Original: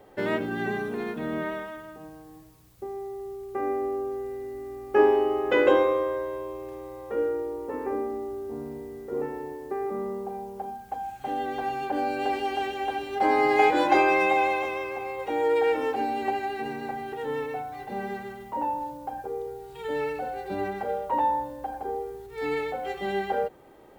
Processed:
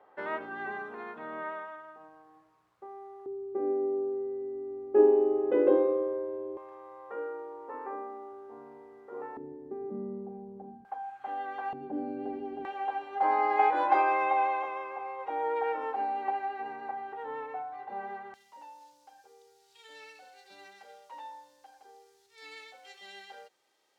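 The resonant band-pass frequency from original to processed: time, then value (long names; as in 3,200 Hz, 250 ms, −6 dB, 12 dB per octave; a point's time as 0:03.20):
resonant band-pass, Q 1.7
1,100 Hz
from 0:03.26 360 Hz
from 0:06.57 1,100 Hz
from 0:09.37 220 Hz
from 0:10.85 1,200 Hz
from 0:11.73 230 Hz
from 0:12.65 1,000 Hz
from 0:18.34 5,300 Hz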